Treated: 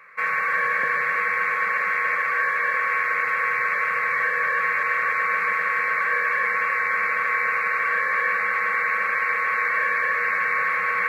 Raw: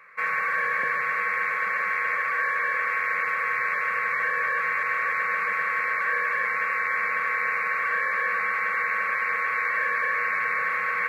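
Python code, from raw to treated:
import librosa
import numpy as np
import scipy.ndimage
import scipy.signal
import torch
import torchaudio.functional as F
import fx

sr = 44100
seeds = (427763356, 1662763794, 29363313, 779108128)

y = x + 10.0 ** (-9.5 / 20.0) * np.pad(x, (int(319 * sr / 1000.0), 0))[:len(x)]
y = y * 10.0 ** (2.5 / 20.0)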